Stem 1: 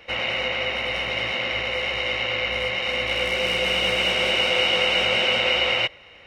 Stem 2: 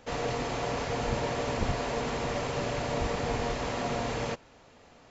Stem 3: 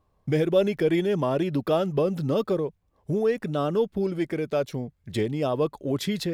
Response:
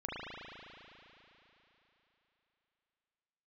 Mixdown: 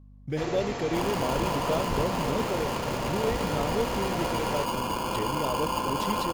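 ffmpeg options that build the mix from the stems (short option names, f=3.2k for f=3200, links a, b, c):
-filter_complex "[0:a]alimiter=limit=-16dB:level=0:latency=1:release=76,acrusher=samples=23:mix=1:aa=0.000001,adelay=850,volume=-8dB,asplit=2[a][b];[b]volume=-7.5dB[c];[1:a]adelay=300,volume=-1.5dB[d];[2:a]volume=-7dB[e];[3:a]atrim=start_sample=2205[f];[c][f]afir=irnorm=-1:irlink=0[g];[a][d][e][g]amix=inputs=4:normalize=0,aeval=exprs='val(0)+0.00355*(sin(2*PI*50*n/s)+sin(2*PI*2*50*n/s)/2+sin(2*PI*3*50*n/s)/3+sin(2*PI*4*50*n/s)/4+sin(2*PI*5*50*n/s)/5)':c=same"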